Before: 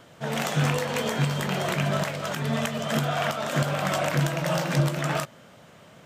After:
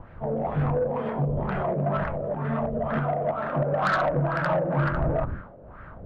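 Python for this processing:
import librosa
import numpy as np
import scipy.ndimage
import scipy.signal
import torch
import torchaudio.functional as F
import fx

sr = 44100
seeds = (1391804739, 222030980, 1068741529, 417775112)

y = fx.dmg_wind(x, sr, seeds[0], corner_hz=110.0, level_db=-36.0)
y = fx.peak_eq(y, sr, hz=1500.0, db=fx.steps((0.0, -12.0), (1.47, -4.0), (3.64, 7.5)), octaves=0.79)
y = fx.quant_dither(y, sr, seeds[1], bits=8, dither='triangular')
y = fx.air_absorb(y, sr, metres=290.0)
y = fx.sample_hold(y, sr, seeds[2], rate_hz=12000.0, jitter_pct=0)
y = fx.filter_lfo_lowpass(y, sr, shape='sine', hz=2.1, low_hz=500.0, high_hz=1600.0, q=2.9)
y = 10.0 ** (-17.0 / 20.0) * np.tanh(y / 10.0 ** (-17.0 / 20.0))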